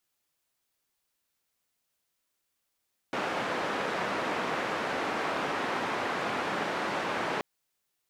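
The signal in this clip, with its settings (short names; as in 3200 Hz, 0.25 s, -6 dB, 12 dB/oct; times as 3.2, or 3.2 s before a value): noise band 210–1400 Hz, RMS -31.5 dBFS 4.28 s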